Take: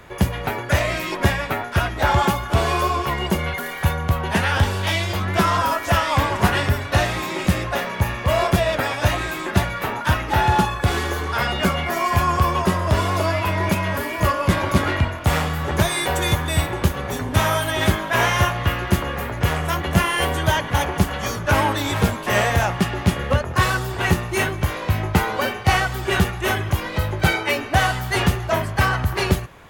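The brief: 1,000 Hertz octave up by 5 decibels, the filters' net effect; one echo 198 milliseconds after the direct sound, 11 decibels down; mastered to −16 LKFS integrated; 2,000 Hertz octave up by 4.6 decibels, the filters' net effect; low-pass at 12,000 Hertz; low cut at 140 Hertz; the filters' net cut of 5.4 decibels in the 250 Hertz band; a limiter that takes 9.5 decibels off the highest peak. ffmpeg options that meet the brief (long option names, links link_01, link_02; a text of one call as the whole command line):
ffmpeg -i in.wav -af "highpass=140,lowpass=12000,equalizer=frequency=250:width_type=o:gain=-7.5,equalizer=frequency=1000:width_type=o:gain=5.5,equalizer=frequency=2000:width_type=o:gain=4,alimiter=limit=-11.5dB:level=0:latency=1,aecho=1:1:198:0.282,volume=5dB" out.wav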